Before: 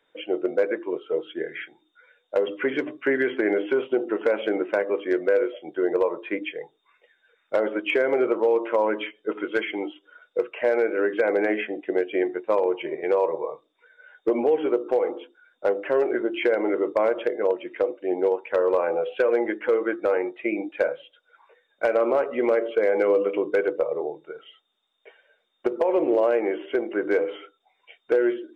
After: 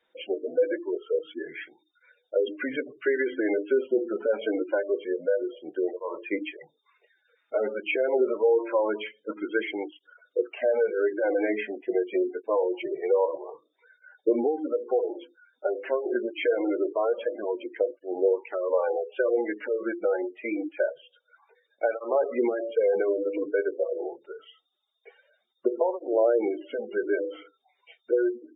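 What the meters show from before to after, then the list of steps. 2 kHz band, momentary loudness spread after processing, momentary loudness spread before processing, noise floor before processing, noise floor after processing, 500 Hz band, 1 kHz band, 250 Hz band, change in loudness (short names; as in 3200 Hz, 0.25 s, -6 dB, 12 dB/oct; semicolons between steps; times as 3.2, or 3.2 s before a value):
-5.0 dB, 9 LU, 9 LU, -72 dBFS, -75 dBFS, -3.0 dB, -4.5 dB, -3.0 dB, -3.0 dB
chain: spectral gate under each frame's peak -20 dB strong; tape flanging out of phase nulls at 0.25 Hz, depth 7.2 ms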